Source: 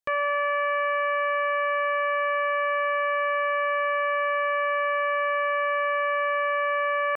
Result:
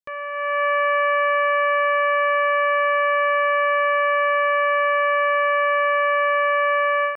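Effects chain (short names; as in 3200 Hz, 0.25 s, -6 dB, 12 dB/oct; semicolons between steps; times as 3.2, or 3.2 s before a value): AGC gain up to 12.5 dB; gain -6.5 dB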